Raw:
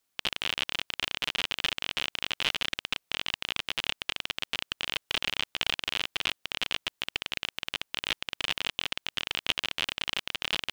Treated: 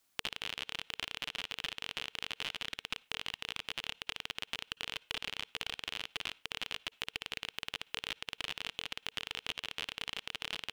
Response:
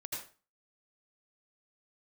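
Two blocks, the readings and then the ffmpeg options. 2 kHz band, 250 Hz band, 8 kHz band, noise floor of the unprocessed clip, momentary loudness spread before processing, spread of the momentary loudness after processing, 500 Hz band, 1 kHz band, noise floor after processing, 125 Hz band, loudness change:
-8.0 dB, -7.5 dB, -7.0 dB, -78 dBFS, 4 LU, 2 LU, -8.5 dB, -7.5 dB, -72 dBFS, -7.5 dB, -8.5 dB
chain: -filter_complex "[0:a]bandreject=f=450:w=12,asplit=2[s0][s1];[1:a]atrim=start_sample=2205,asetrate=66150,aresample=44100[s2];[s1][s2]afir=irnorm=-1:irlink=0,volume=0.0944[s3];[s0][s3]amix=inputs=2:normalize=0,acompressor=threshold=0.0141:ratio=10,volume=1.5"

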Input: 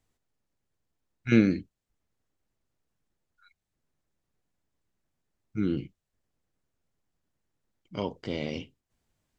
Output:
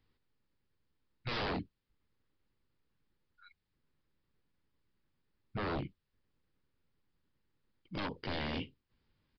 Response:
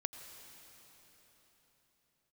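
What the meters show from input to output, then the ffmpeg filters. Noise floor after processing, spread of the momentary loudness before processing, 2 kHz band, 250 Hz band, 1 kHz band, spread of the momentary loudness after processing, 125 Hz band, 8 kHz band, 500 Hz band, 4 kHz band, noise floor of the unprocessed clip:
-84 dBFS, 18 LU, -4.5 dB, -15.0 dB, +3.0 dB, 10 LU, -9.5 dB, no reading, -8.0 dB, +1.0 dB, -85 dBFS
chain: -af "equalizer=f=680:w=4.9:g=-13,aeval=exprs='0.0251*(abs(mod(val(0)/0.0251+3,4)-2)-1)':c=same,aresample=11025,aresample=44100,volume=1.19"

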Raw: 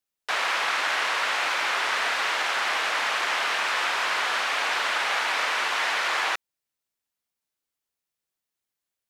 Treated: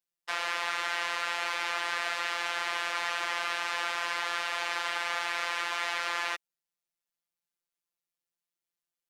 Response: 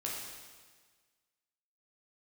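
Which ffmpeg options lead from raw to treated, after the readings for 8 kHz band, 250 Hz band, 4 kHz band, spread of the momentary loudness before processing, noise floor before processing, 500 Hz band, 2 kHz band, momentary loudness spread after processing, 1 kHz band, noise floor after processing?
-6.5 dB, -5.0 dB, -7.0 dB, 1 LU, under -85 dBFS, -6.0 dB, -7.0 dB, 1 LU, -6.5 dB, under -85 dBFS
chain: -af "acontrast=33,afftfilt=real='hypot(re,im)*cos(PI*b)':imag='0':win_size=1024:overlap=0.75,volume=0.376"

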